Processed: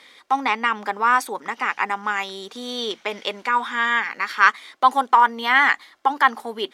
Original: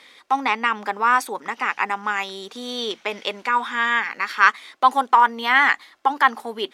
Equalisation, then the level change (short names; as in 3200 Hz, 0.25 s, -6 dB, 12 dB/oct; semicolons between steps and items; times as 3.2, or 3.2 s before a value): notch 2600 Hz, Q 23; 0.0 dB